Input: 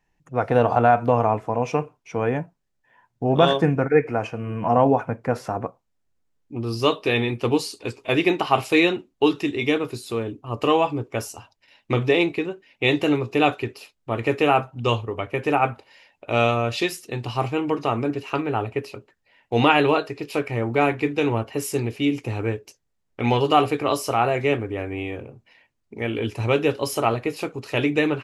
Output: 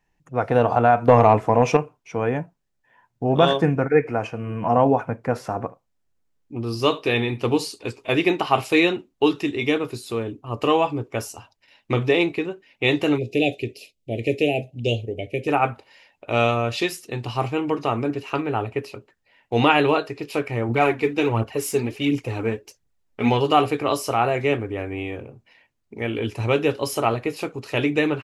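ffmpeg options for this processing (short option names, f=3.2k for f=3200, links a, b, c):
-filter_complex "[0:a]asettb=1/sr,asplit=3[a][b][c];[a]atrim=end=1.084[d];[b]atrim=start=1.08:end=1.77,asetpts=PTS-STARTPTS,afade=t=in:d=0.004:c=qsin,afade=t=out:st=0.686:d=0.004:c=qsin,acontrast=90[e];[c]atrim=start=1.766[f];[d][e]acrossfade=d=0.004:c1=hsin:c2=qsin[g];[g][f]acrossfade=d=0.004:c1=qsin:c2=hsin,asplit=3[h][i][j];[h]afade=t=out:st=5.48:d=0.02[k];[i]aecho=1:1:73:0.106,afade=t=in:st=5.48:d=0.02,afade=t=out:st=7.69:d=0.02[l];[j]afade=t=in:st=7.69:d=0.02[m];[k][l][m]amix=inputs=3:normalize=0,asplit=3[n][o][p];[n]afade=t=out:st=13.17:d=0.02[q];[o]asuperstop=centerf=1200:order=8:qfactor=0.78,afade=t=in:st=13.17:d=0.02,afade=t=out:st=15.47:d=0.02[r];[p]afade=t=in:st=15.47:d=0.02[s];[q][r][s]amix=inputs=3:normalize=0,asplit=3[t][u][v];[t]afade=t=out:st=20.68:d=0.02[w];[u]aphaser=in_gain=1:out_gain=1:delay=4.9:decay=0.49:speed=1.4:type=triangular,afade=t=in:st=20.68:d=0.02,afade=t=out:st=23.28:d=0.02[x];[v]afade=t=in:st=23.28:d=0.02[y];[w][x][y]amix=inputs=3:normalize=0"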